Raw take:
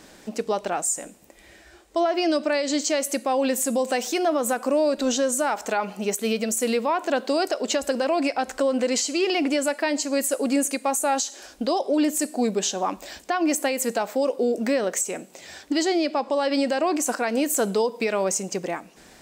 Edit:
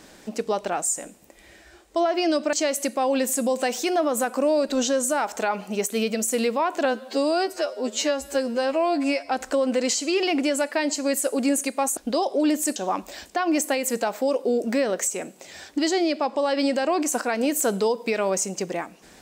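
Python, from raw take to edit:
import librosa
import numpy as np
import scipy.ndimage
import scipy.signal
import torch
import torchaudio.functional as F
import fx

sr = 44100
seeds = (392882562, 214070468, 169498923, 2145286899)

y = fx.edit(x, sr, fx.cut(start_s=2.53, length_s=0.29),
    fx.stretch_span(start_s=7.14, length_s=1.22, factor=2.0),
    fx.cut(start_s=11.04, length_s=0.47),
    fx.cut(start_s=12.3, length_s=0.4), tone=tone)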